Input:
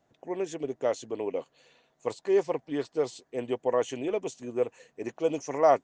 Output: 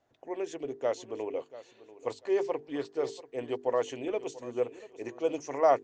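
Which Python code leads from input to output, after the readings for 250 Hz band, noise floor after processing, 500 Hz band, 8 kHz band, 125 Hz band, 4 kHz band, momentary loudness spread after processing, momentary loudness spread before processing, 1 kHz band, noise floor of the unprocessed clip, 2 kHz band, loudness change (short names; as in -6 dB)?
-3.5 dB, -63 dBFS, -2.5 dB, -4.5 dB, -6.0 dB, -2.0 dB, 10 LU, 11 LU, -2.0 dB, -72 dBFS, -2.0 dB, -2.5 dB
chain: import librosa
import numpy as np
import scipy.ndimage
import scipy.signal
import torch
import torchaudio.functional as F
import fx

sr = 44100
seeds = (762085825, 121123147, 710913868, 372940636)

p1 = scipy.signal.sosfilt(scipy.signal.butter(2, 6900.0, 'lowpass', fs=sr, output='sos'), x)
p2 = fx.peak_eq(p1, sr, hz=180.0, db=-14.5, octaves=0.34)
p3 = fx.hum_notches(p2, sr, base_hz=50, count=9)
p4 = p3 + fx.echo_feedback(p3, sr, ms=689, feedback_pct=24, wet_db=-17, dry=0)
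y = F.gain(torch.from_numpy(p4), -2.0).numpy()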